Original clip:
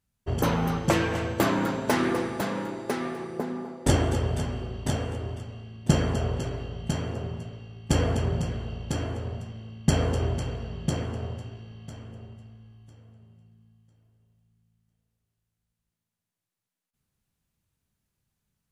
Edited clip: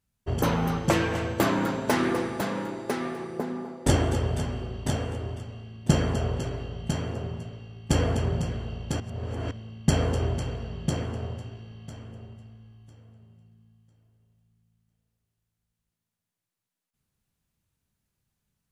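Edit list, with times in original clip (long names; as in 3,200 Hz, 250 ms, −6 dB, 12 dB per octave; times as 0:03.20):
0:09.00–0:09.51: reverse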